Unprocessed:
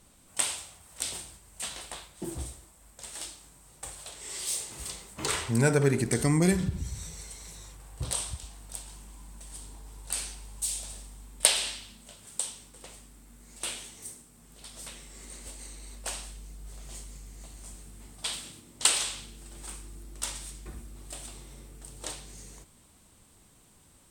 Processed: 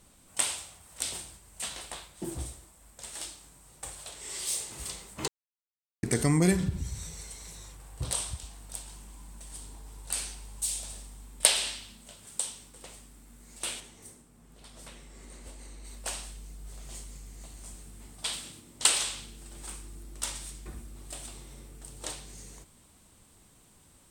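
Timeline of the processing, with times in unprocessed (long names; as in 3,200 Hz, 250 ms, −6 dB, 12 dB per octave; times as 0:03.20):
0:05.28–0:06.03: silence
0:13.80–0:15.85: high-shelf EQ 2,500 Hz −8.5 dB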